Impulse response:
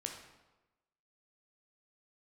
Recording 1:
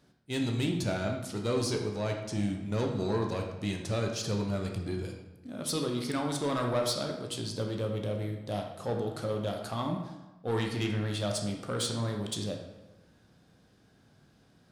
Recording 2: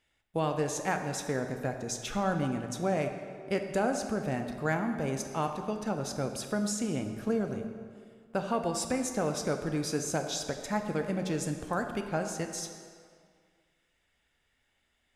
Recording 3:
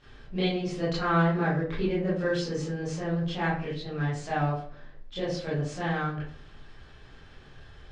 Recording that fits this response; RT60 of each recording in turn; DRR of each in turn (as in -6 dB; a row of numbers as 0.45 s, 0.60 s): 1; 1.1 s, 2.1 s, 0.55 s; 2.0 dB, 5.0 dB, -10.5 dB